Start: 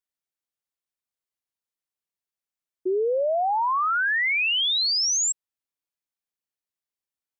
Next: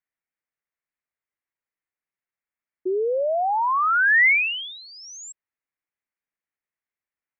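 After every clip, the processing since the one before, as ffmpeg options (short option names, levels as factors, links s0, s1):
-af "highshelf=f=3000:t=q:w=3:g=-13"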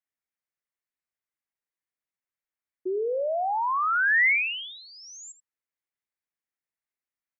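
-af "aecho=1:1:80:0.168,volume=0.596"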